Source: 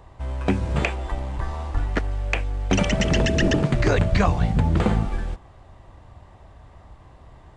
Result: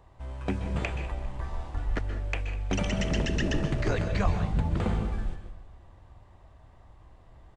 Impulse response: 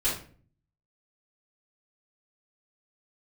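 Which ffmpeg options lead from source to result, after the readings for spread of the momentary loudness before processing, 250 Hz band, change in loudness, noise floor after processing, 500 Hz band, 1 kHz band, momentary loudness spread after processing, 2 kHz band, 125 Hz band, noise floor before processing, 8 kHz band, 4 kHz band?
10 LU, −8.0 dB, −7.5 dB, −55 dBFS, −8.5 dB, −8.5 dB, 9 LU, −8.5 dB, −7.0 dB, −49 dBFS, −8.5 dB, −8.0 dB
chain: -filter_complex "[0:a]asplit=5[link_01][link_02][link_03][link_04][link_05];[link_02]adelay=200,afreqshift=-35,volume=-21dB[link_06];[link_03]adelay=400,afreqshift=-70,volume=-25.9dB[link_07];[link_04]adelay=600,afreqshift=-105,volume=-30.8dB[link_08];[link_05]adelay=800,afreqshift=-140,volume=-35.6dB[link_09];[link_01][link_06][link_07][link_08][link_09]amix=inputs=5:normalize=0,asplit=2[link_10][link_11];[1:a]atrim=start_sample=2205,adelay=122[link_12];[link_11][link_12]afir=irnorm=-1:irlink=0,volume=-17dB[link_13];[link_10][link_13]amix=inputs=2:normalize=0,volume=-9dB"

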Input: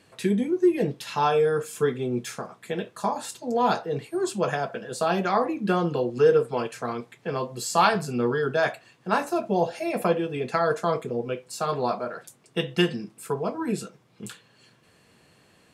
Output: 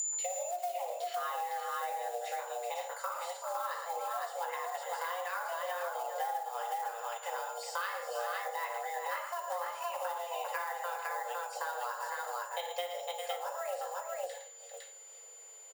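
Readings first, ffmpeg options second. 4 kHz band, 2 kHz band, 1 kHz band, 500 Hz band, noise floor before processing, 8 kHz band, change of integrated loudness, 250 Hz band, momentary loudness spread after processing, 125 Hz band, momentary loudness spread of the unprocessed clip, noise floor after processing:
−9.5 dB, −8.0 dB, −7.0 dB, −14.5 dB, −60 dBFS, −1.5 dB, −11.5 dB, below −40 dB, 3 LU, below −40 dB, 12 LU, −52 dBFS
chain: -filter_complex "[0:a]acrossover=split=4300[link_01][link_02];[link_02]acompressor=threshold=-54dB:ratio=4:attack=1:release=60[link_03];[link_01][link_03]amix=inputs=2:normalize=0,flanger=delay=5.2:depth=6.4:regen=80:speed=0.73:shape=sinusoidal,acrusher=bits=5:mode=log:mix=0:aa=0.000001,lowshelf=frequency=83:gain=8,bandreject=frequency=50.02:width_type=h:width=4,bandreject=frequency=100.04:width_type=h:width=4,bandreject=frequency=150.06:width_type=h:width=4,bandreject=frequency=200.08:width_type=h:width=4,bandreject=frequency=250.1:width_type=h:width=4,bandreject=frequency=300.12:width_type=h:width=4,bandreject=frequency=350.14:width_type=h:width=4,bandreject=frequency=400.16:width_type=h:width=4,bandreject=frequency=450.18:width_type=h:width=4,bandreject=frequency=500.2:width_type=h:width=4,bandreject=frequency=550.22:width_type=h:width=4,bandreject=frequency=600.24:width_type=h:width=4,bandreject=frequency=650.26:width_type=h:width=4,bandreject=frequency=700.28:width_type=h:width=4,bandreject=frequency=750.3:width_type=h:width=4,bandreject=frequency=800.32:width_type=h:width=4,bandreject=frequency=850.34:width_type=h:width=4,bandreject=frequency=900.36:width_type=h:width=4,bandreject=frequency=950.38:width_type=h:width=4,bandreject=frequency=1000.4:width_type=h:width=4,bandreject=frequency=1050.42:width_type=h:width=4,bandreject=frequency=1100.44:width_type=h:width=4,bandreject=frequency=1150.46:width_type=h:width=4,bandreject=frequency=1200.48:width_type=h:width=4,bandreject=frequency=1250.5:width_type=h:width=4,bandreject=frequency=1300.52:width_type=h:width=4,bandreject=frequency=1350.54:width_type=h:width=4,bandreject=frequency=1400.56:width_type=h:width=4,aeval=exprs='val(0)+0.0282*sin(2*PI*6700*n/s)':channel_layout=same,highshelf=frequency=8800:gain=11.5,aecho=1:1:57|112|398|508:0.266|0.299|0.237|0.668,acompressor=threshold=-32dB:ratio=6,afreqshift=350,volume=-2dB"

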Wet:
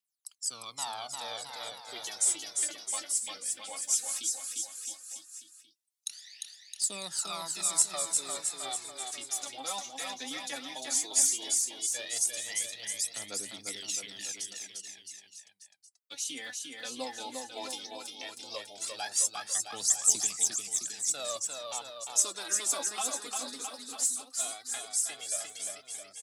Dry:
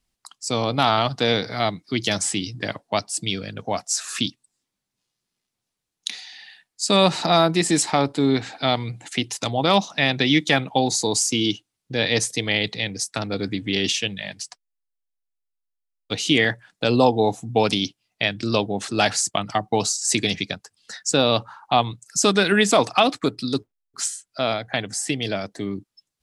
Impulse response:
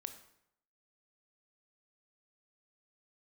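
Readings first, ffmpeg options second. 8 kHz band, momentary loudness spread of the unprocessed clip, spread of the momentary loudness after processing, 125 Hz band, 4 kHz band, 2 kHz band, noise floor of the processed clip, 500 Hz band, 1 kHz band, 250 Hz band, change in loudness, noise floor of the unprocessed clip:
0.0 dB, 12 LU, 14 LU, below −30 dB, −13.5 dB, −18.0 dB, −62 dBFS, −22.0 dB, −18.0 dB, −27.0 dB, −9.5 dB, −83 dBFS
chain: -filter_complex "[0:a]agate=range=-7dB:threshold=-47dB:ratio=16:detection=peak,aderivative,acrossover=split=140|1500|5600[link_01][link_02][link_03][link_04];[link_03]acompressor=threshold=-47dB:ratio=6[link_05];[link_01][link_02][link_05][link_04]amix=inputs=4:normalize=0,aphaser=in_gain=1:out_gain=1:delay=4.2:decay=0.72:speed=0.15:type=triangular,aecho=1:1:350|665|948.5|1204|1433:0.631|0.398|0.251|0.158|0.1,volume=-4dB"

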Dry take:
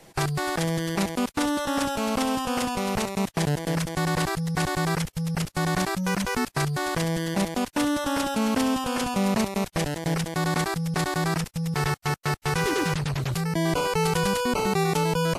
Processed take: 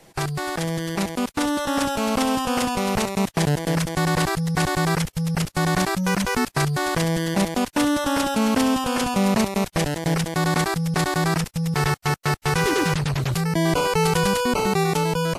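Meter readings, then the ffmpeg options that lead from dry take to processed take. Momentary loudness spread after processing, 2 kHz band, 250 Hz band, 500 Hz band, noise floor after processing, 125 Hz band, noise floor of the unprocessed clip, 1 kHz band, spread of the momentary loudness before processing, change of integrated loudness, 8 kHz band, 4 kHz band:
4 LU, +3.5 dB, +3.5 dB, +3.5 dB, −50 dBFS, +3.5 dB, −51 dBFS, +3.5 dB, 4 LU, +3.5 dB, +3.5 dB, +3.5 dB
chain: -af "dynaudnorm=framelen=590:gausssize=5:maxgain=4dB"

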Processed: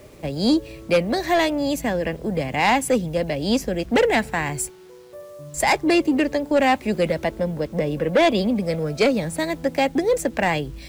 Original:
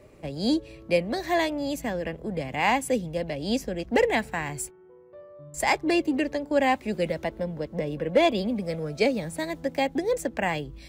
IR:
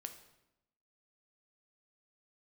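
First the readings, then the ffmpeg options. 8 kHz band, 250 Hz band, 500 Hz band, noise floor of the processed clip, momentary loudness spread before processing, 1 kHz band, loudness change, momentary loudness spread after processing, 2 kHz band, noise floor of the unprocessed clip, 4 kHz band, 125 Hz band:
+6.5 dB, +6.0 dB, +5.0 dB, −44 dBFS, 9 LU, +5.0 dB, +5.5 dB, 7 LU, +5.0 dB, −51 dBFS, +5.5 dB, +6.5 dB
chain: -af "acrusher=bits=9:mix=0:aa=0.000001,aeval=exprs='0.266*sin(PI/2*1.41*val(0)/0.266)':channel_layout=same"

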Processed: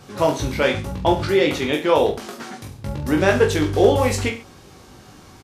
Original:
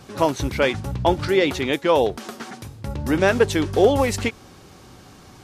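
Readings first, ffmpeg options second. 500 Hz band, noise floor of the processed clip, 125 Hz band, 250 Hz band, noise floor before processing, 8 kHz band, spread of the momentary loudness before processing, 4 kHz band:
+1.5 dB, −46 dBFS, +2.5 dB, +1.0 dB, −46 dBFS, +1.5 dB, 16 LU, +1.0 dB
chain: -af "aecho=1:1:20|43|69.45|99.87|134.8:0.631|0.398|0.251|0.158|0.1,volume=-1dB"

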